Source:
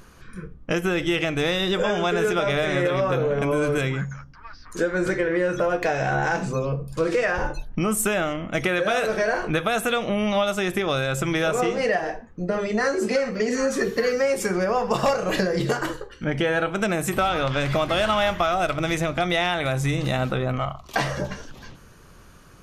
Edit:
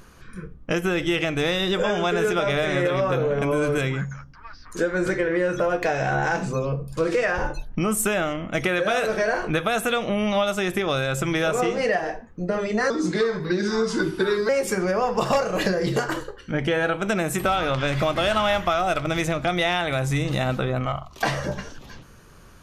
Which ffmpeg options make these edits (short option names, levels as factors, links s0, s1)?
-filter_complex "[0:a]asplit=3[s0][s1][s2];[s0]atrim=end=12.904[s3];[s1]atrim=start=12.9:end=14.22,asetpts=PTS-STARTPTS,asetrate=36603,aresample=44100[s4];[s2]atrim=start=14.216[s5];[s3][s4]acrossfade=d=0.004:c1=hsin:c2=hsin[s6];[s6][s5]acrossfade=d=0.004:c1=hsin:c2=hsin"